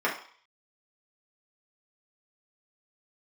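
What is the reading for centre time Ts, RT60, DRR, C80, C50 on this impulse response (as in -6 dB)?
25 ms, 0.50 s, -5.0 dB, 12.5 dB, 8.0 dB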